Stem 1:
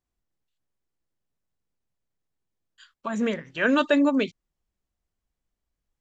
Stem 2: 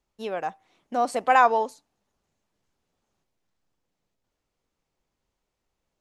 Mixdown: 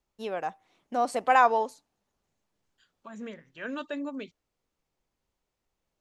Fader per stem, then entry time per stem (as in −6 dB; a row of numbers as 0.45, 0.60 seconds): −14.5, −2.5 decibels; 0.00, 0.00 seconds